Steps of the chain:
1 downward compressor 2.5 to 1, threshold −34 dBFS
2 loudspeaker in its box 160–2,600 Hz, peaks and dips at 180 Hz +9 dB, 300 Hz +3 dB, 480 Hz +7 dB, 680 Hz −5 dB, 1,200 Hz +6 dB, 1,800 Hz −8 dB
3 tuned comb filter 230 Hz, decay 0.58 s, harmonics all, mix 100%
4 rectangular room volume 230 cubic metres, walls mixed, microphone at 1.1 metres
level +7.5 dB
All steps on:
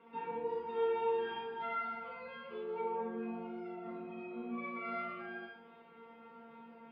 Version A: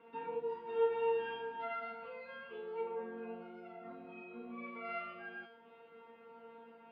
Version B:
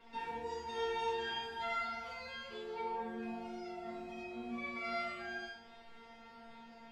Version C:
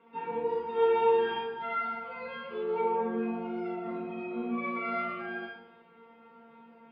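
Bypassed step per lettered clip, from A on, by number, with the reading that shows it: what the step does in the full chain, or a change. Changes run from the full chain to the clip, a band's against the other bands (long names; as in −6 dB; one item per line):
4, change in crest factor +3.0 dB
2, 4 kHz band +11.0 dB
1, average gain reduction 6.0 dB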